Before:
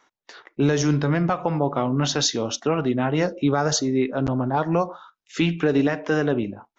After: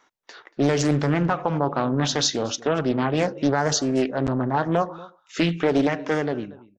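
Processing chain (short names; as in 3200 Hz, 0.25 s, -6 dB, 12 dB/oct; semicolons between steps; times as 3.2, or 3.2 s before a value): ending faded out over 0.75 s; outdoor echo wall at 40 m, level -20 dB; Doppler distortion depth 0.47 ms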